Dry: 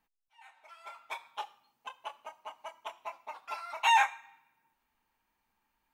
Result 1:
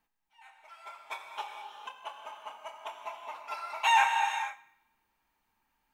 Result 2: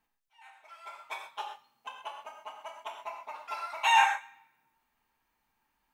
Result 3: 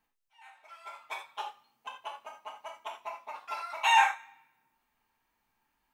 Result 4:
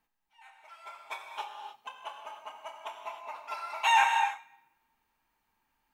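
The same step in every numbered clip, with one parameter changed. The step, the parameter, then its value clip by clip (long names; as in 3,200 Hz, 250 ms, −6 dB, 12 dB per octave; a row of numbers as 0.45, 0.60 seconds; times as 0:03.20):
reverb whose tail is shaped and stops, gate: 500, 150, 100, 330 milliseconds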